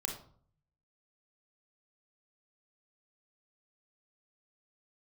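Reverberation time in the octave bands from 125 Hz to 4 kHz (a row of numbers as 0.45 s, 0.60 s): 1.0 s, 0.65 s, 0.55 s, 0.50 s, 0.35 s, 0.35 s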